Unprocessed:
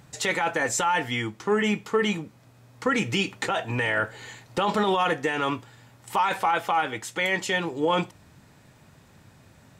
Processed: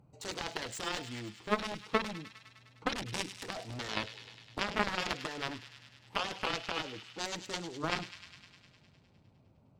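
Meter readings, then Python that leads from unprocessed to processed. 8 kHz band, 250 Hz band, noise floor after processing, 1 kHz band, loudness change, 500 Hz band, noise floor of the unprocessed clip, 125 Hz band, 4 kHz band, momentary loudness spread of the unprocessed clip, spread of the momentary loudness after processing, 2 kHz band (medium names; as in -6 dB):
-10.5 dB, -12.0 dB, -64 dBFS, -13.0 dB, -11.5 dB, -13.0 dB, -55 dBFS, -11.0 dB, -6.0 dB, 7 LU, 15 LU, -11.5 dB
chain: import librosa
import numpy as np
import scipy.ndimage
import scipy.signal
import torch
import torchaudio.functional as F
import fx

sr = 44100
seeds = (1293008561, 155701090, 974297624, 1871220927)

y = fx.wiener(x, sr, points=25)
y = fx.cheby_harmonics(y, sr, harmonics=(3,), levels_db=(-7,), full_scale_db=-12.5)
y = fx.echo_wet_highpass(y, sr, ms=102, feedback_pct=74, hz=2100.0, wet_db=-10)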